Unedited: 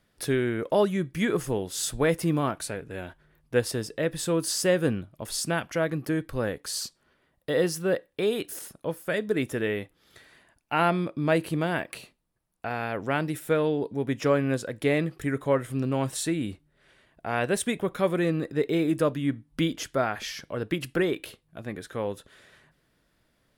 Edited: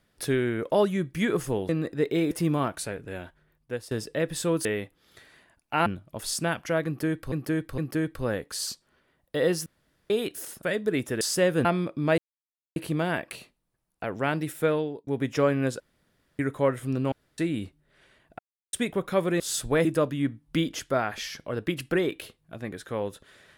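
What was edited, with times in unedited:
0:01.69–0:02.14: swap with 0:18.27–0:18.89
0:02.94–0:03.74: fade out, to −14.5 dB
0:04.48–0:04.92: swap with 0:09.64–0:10.85
0:05.92–0:06.38: repeat, 3 plays
0:07.80–0:08.24: fill with room tone
0:08.77–0:09.06: remove
0:11.38: splice in silence 0.58 s
0:12.66–0:12.91: remove
0:13.58–0:13.94: fade out
0:14.67–0:15.26: fill with room tone
0:15.99–0:16.25: fill with room tone
0:17.26–0:17.60: silence

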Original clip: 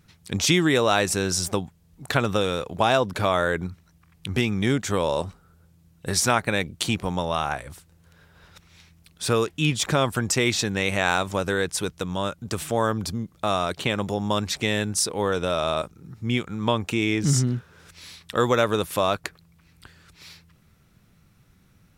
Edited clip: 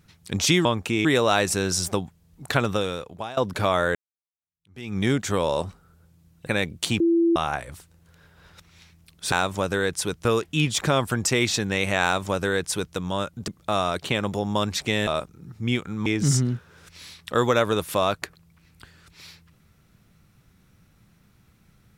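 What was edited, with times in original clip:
0:02.23–0:02.97: fade out, to −21.5 dB
0:03.55–0:04.57: fade in exponential
0:06.07–0:06.45: remove
0:06.98–0:07.34: beep over 336 Hz −16 dBFS
0:11.08–0:12.01: duplicate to 0:09.30
0:12.53–0:13.23: remove
0:14.82–0:15.69: remove
0:16.68–0:17.08: move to 0:00.65

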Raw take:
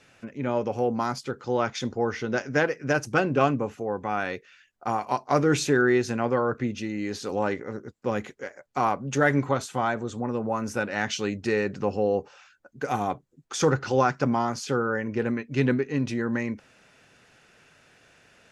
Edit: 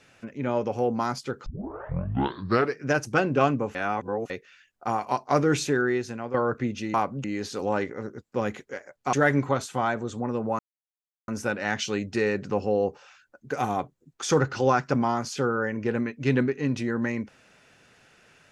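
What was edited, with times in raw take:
0:01.46: tape start 1.38 s
0:03.75–0:04.30: reverse
0:05.37–0:06.34: fade out, to −10 dB
0:08.83–0:09.13: move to 0:06.94
0:10.59: splice in silence 0.69 s

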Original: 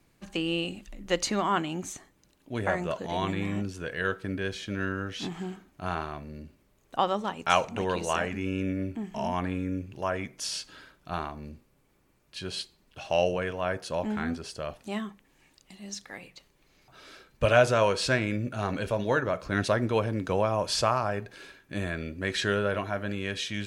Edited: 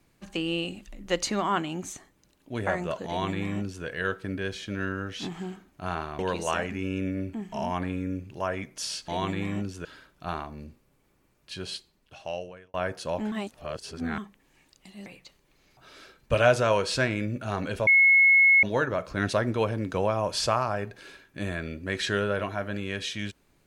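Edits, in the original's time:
0:03.08–0:03.85: duplicate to 0:10.70
0:06.19–0:07.81: remove
0:12.40–0:13.59: fade out
0:14.17–0:15.03: reverse
0:15.91–0:16.17: remove
0:18.98: insert tone 2,180 Hz −14.5 dBFS 0.76 s

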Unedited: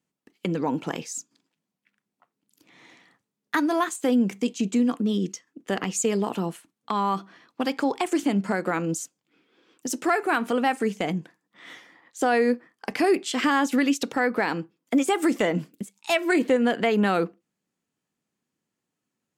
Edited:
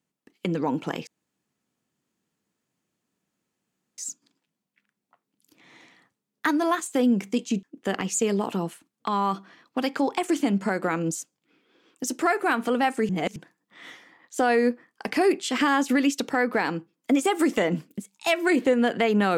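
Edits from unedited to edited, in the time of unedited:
0:01.07: splice in room tone 2.91 s
0:04.72–0:05.46: remove
0:10.92–0:11.19: reverse

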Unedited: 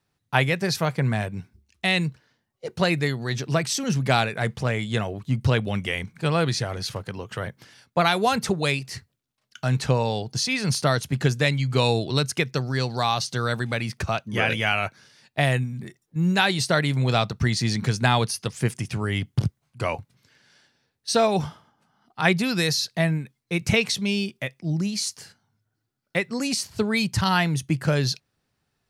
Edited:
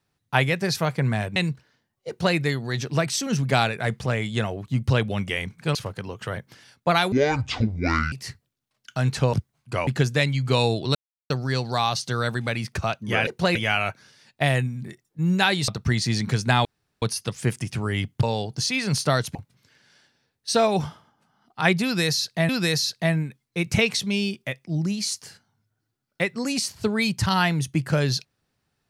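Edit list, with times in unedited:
0:01.36–0:01.93: remove
0:02.65–0:02.93: duplicate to 0:14.52
0:06.32–0:06.85: remove
0:08.22–0:08.79: play speed 57%
0:10.00–0:11.12: swap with 0:19.41–0:19.95
0:12.20–0:12.55: silence
0:16.65–0:17.23: remove
0:18.20: splice in room tone 0.37 s
0:22.44–0:23.09: repeat, 2 plays

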